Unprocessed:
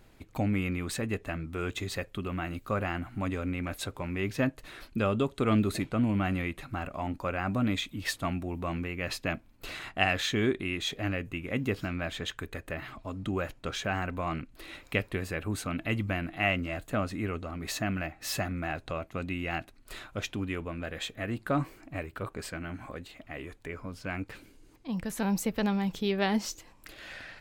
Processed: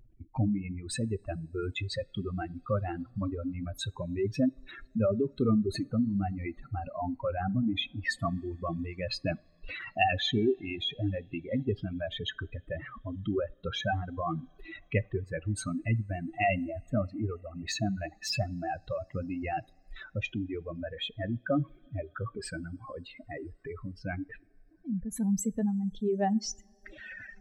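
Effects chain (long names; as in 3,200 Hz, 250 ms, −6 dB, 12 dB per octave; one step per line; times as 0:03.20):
expanding power law on the bin magnitudes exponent 2.7
coupled-rooms reverb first 0.42 s, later 4.3 s, from −18 dB, DRR 12.5 dB
reverb reduction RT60 1.2 s
level +1.5 dB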